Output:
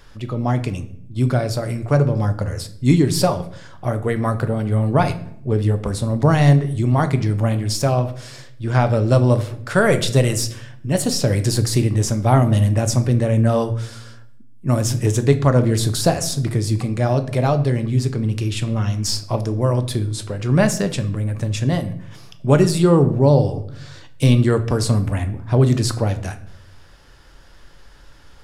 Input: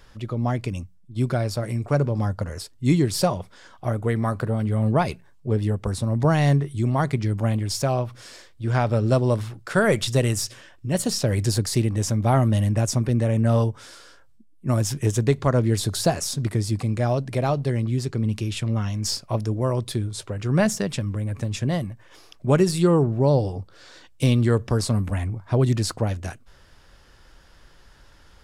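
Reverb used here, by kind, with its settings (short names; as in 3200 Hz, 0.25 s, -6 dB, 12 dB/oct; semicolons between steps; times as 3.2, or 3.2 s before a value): shoebox room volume 130 m³, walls mixed, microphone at 0.3 m; gain +3.5 dB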